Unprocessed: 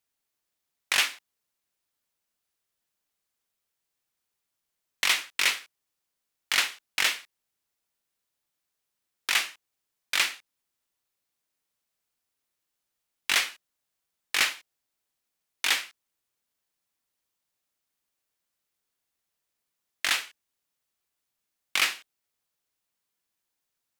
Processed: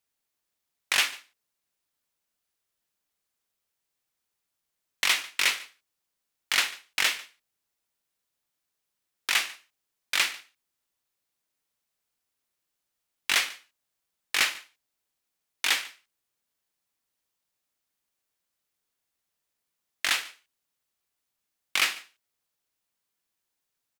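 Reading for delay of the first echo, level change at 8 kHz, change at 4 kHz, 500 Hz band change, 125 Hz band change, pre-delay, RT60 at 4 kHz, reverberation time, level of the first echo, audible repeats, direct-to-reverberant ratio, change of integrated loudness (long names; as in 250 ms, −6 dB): 145 ms, 0.0 dB, 0.0 dB, 0.0 dB, can't be measured, no reverb audible, no reverb audible, no reverb audible, −21.5 dB, 1, no reverb audible, 0.0 dB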